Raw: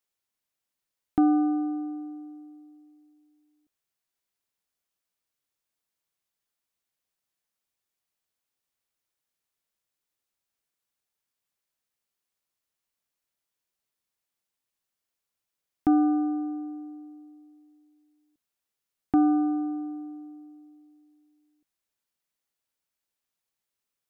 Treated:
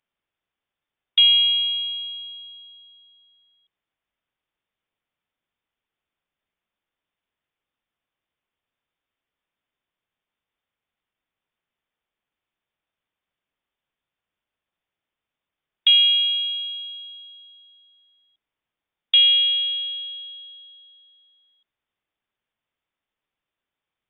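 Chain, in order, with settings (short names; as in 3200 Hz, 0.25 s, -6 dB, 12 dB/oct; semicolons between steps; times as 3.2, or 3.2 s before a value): inverted band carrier 3600 Hz; gain +5.5 dB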